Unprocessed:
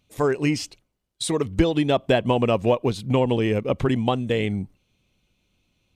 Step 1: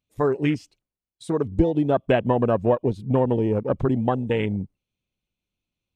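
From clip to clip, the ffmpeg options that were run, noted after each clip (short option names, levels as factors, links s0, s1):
-af "afwtdn=0.0398"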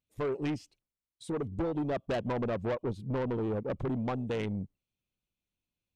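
-af "asoftclip=type=tanh:threshold=0.0841,volume=0.501"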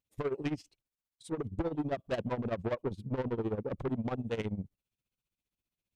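-af "tremolo=f=15:d=0.83,volume=1.19"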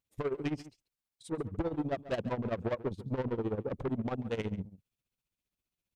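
-filter_complex "[0:a]asplit=2[s0][s1];[s1]adelay=139.9,volume=0.158,highshelf=f=4000:g=-3.15[s2];[s0][s2]amix=inputs=2:normalize=0"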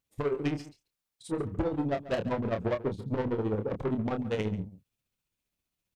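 -filter_complex "[0:a]asplit=2[s0][s1];[s1]adelay=28,volume=0.447[s2];[s0][s2]amix=inputs=2:normalize=0,volume=1.41"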